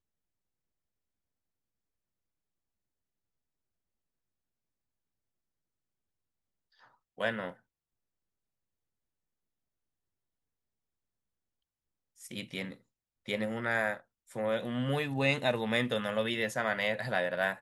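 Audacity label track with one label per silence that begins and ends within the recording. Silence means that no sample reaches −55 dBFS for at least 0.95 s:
7.570000	12.170000	silence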